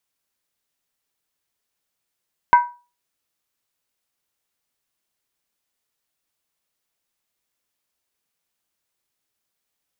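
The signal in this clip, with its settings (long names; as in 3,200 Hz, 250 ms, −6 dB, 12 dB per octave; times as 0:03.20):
struck skin, lowest mode 969 Hz, decay 0.32 s, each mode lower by 10 dB, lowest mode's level −5 dB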